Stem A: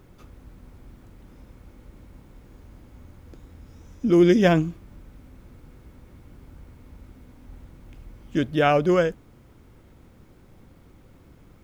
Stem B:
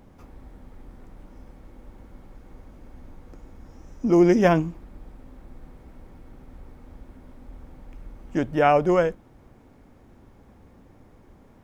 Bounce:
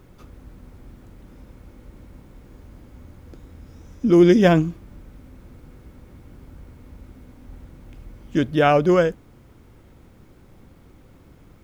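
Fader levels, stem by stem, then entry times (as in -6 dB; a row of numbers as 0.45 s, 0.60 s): +2.0 dB, -12.5 dB; 0.00 s, 0.00 s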